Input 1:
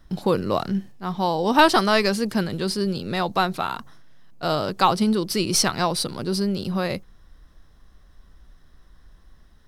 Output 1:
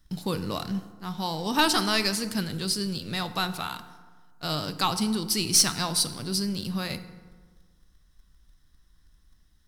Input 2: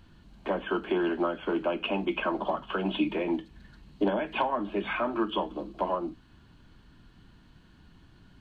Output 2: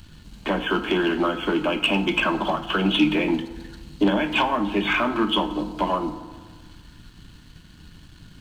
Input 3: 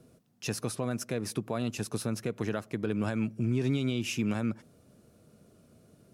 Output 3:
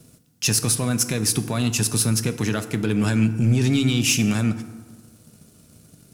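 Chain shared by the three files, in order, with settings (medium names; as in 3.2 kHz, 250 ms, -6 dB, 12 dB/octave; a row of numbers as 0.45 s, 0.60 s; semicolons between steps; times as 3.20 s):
FFT filter 170 Hz 0 dB, 540 Hz -9 dB, 7.6 kHz +8 dB; waveshaping leveller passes 1; FDN reverb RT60 1.5 s, low-frequency decay 1.05×, high-frequency decay 0.5×, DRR 10 dB; peak normalisation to -9 dBFS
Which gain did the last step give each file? -7.5 dB, +8.0 dB, +8.5 dB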